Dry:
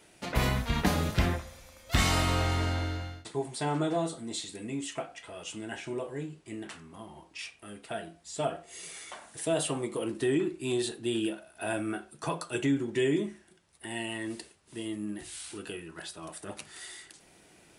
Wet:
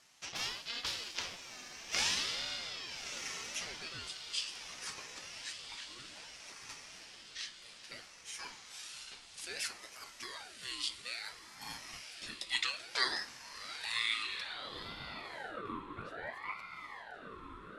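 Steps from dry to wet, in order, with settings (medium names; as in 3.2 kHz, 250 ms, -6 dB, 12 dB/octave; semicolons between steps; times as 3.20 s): 12.49–14.27 s: frequency weighting D; echo that smears into a reverb 1210 ms, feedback 64%, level -8.5 dB; band-pass sweep 4.3 kHz -> 580 Hz, 14.20–15.50 s; ring modulator with a swept carrier 1.2 kHz, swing 45%, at 0.6 Hz; trim +6.5 dB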